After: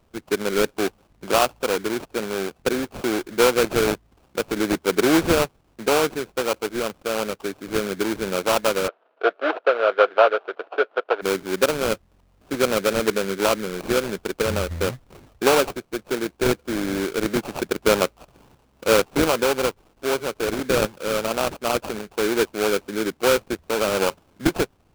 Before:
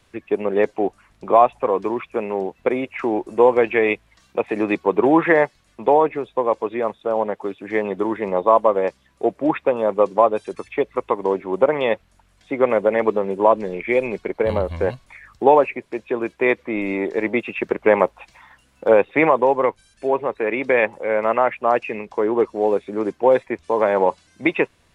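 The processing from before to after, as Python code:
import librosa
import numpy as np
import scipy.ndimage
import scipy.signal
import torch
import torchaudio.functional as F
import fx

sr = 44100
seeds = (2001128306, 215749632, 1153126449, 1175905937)

y = fx.peak_eq(x, sr, hz=1000.0, db=-10.0, octaves=1.4)
y = fx.sample_hold(y, sr, seeds[0], rate_hz=1900.0, jitter_pct=20)
y = fx.cabinet(y, sr, low_hz=400.0, low_slope=24, high_hz=3300.0, hz=(460.0, 660.0, 1400.0, 2100.0), db=(4, 9, 9, -3), at=(8.87, 11.21), fade=0.02)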